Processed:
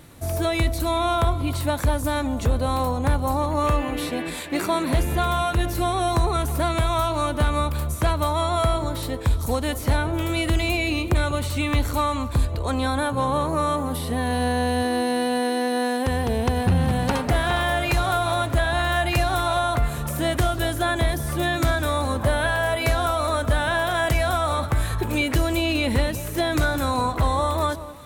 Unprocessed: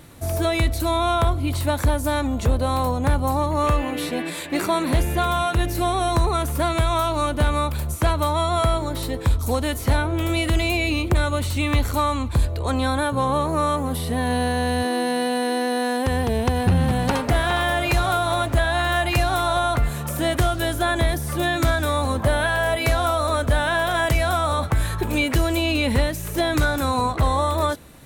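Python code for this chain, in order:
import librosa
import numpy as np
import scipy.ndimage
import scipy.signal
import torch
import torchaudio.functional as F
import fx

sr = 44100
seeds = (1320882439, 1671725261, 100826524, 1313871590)

y = fx.echo_alternate(x, sr, ms=190, hz=1200.0, feedback_pct=54, wet_db=-13)
y = F.gain(torch.from_numpy(y), -1.5).numpy()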